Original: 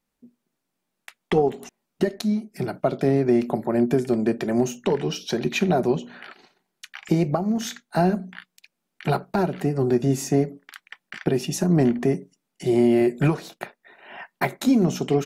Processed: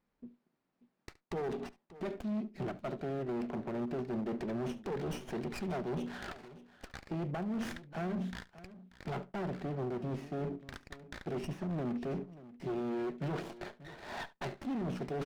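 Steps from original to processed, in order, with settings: low-pass 3.8 kHz 24 dB/octave; reverse; compression 12:1, threshold -29 dBFS, peak gain reduction 15.5 dB; reverse; peak limiter -25 dBFS, peak gain reduction 10 dB; hard clipper -33 dBFS, distortion -10 dB; on a send: multi-tap echo 71/585 ms -19.5/-17 dB; on the sum: sliding maximum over 9 samples

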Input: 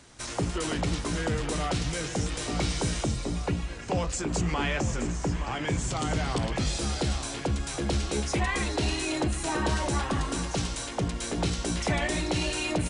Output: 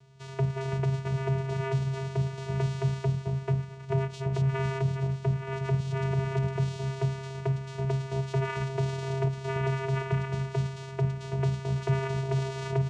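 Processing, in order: dynamic bell 1.1 kHz, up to +6 dB, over -44 dBFS, Q 0.79; vocoder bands 4, square 134 Hz

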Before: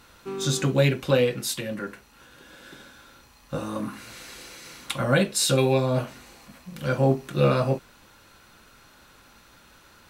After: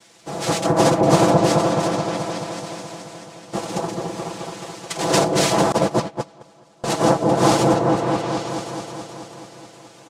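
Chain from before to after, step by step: noise-vocoded speech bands 2; comb 6 ms, depth 71%; delay with an opening low-pass 214 ms, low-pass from 750 Hz, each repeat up 1 oct, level 0 dB; 5.72–6.84 s: gate -15 dBFS, range -27 dB; trim +1 dB

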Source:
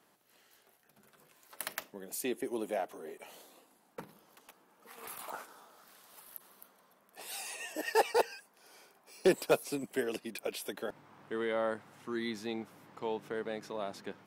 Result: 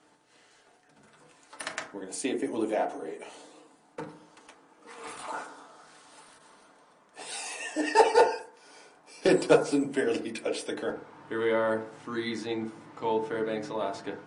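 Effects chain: FDN reverb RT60 0.5 s, low-frequency decay 1.05×, high-frequency decay 0.3×, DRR 1.5 dB; trim +4.5 dB; MP3 40 kbps 22.05 kHz

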